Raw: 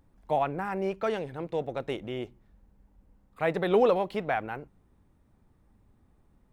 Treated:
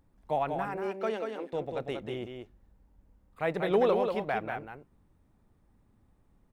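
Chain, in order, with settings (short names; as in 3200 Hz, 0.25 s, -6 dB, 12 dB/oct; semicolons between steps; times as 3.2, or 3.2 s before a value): 0.67–1.53 elliptic high-pass 210 Hz; on a send: echo 0.188 s -5.5 dB; on the sum: gain -3 dB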